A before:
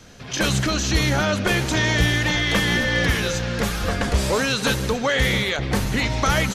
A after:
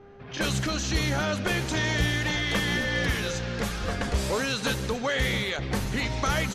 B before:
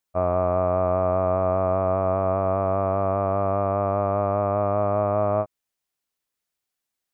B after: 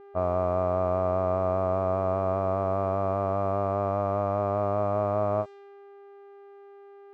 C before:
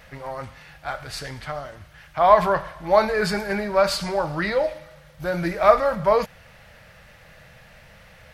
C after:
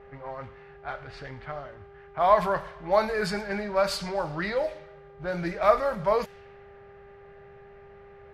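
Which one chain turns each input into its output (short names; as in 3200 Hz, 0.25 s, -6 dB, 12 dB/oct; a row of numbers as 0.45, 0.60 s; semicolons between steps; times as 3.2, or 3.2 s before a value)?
buzz 400 Hz, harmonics 21, -45 dBFS -9 dB/oct; low-pass opened by the level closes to 1400 Hz, open at -17.5 dBFS; match loudness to -27 LUFS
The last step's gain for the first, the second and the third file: -6.5, -4.0, -5.5 dB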